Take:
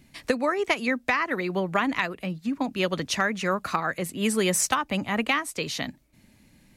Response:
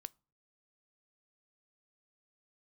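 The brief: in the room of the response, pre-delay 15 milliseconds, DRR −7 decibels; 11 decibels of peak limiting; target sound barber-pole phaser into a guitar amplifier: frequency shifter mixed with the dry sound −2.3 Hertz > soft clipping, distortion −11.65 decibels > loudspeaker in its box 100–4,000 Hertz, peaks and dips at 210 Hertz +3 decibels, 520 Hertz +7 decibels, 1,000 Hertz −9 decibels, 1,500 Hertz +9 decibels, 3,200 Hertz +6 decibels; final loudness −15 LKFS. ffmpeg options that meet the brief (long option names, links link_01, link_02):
-filter_complex "[0:a]alimiter=limit=-21dB:level=0:latency=1,asplit=2[link_01][link_02];[1:a]atrim=start_sample=2205,adelay=15[link_03];[link_02][link_03]afir=irnorm=-1:irlink=0,volume=12dB[link_04];[link_01][link_04]amix=inputs=2:normalize=0,asplit=2[link_05][link_06];[link_06]afreqshift=-2.3[link_07];[link_05][link_07]amix=inputs=2:normalize=1,asoftclip=threshold=-23dB,highpass=100,equalizer=frequency=210:width_type=q:width=4:gain=3,equalizer=frequency=520:width_type=q:width=4:gain=7,equalizer=frequency=1000:width_type=q:width=4:gain=-9,equalizer=frequency=1500:width_type=q:width=4:gain=9,equalizer=frequency=3200:width_type=q:width=4:gain=6,lowpass=frequency=4000:width=0.5412,lowpass=frequency=4000:width=1.3066,volume=12.5dB"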